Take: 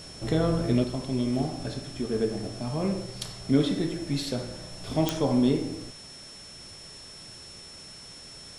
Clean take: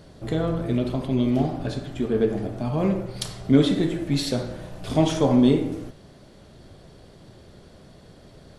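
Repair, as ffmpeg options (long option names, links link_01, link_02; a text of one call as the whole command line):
ffmpeg -i in.wav -af "adeclick=threshold=4,bandreject=frequency=5400:width=30,afwtdn=0.004,asetnsamples=nb_out_samples=441:pad=0,asendcmd='0.84 volume volume 5.5dB',volume=0dB" out.wav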